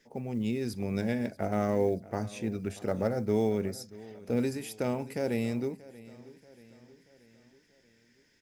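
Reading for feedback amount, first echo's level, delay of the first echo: 52%, −19.5 dB, 633 ms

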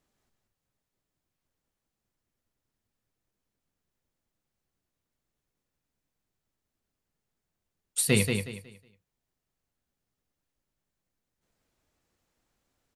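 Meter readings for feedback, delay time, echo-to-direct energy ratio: 27%, 183 ms, −5.0 dB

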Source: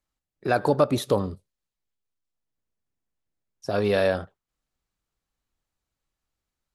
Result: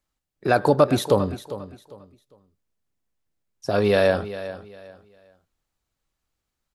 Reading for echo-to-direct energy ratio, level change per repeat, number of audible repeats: −13.5 dB, −11.5 dB, 2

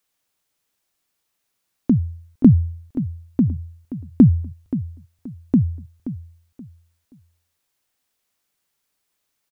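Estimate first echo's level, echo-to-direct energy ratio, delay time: −13.0 dB, −12.5 dB, 527 ms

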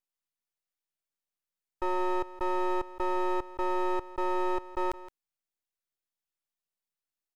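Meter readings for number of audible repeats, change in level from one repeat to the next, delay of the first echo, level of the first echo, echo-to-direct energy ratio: 1, repeats not evenly spaced, 168 ms, −16.5 dB, −16.5 dB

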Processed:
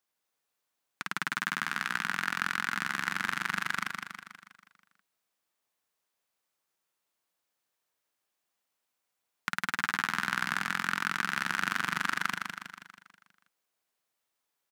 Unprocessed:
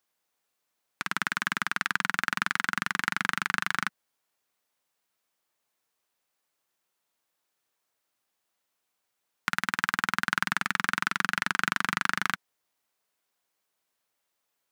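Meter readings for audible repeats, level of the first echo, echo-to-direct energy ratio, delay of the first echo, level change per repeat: 6, −5.0 dB, −3.5 dB, 161 ms, −5.5 dB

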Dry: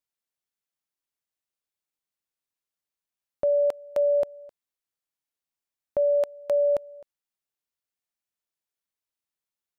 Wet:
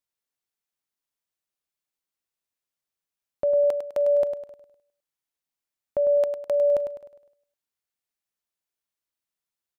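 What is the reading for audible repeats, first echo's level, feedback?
4, −8.5 dB, 42%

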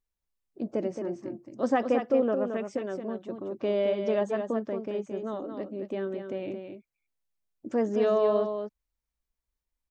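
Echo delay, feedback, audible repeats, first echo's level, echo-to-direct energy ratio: 221 ms, repeats not evenly spaced, 1, −7.0 dB, −7.0 dB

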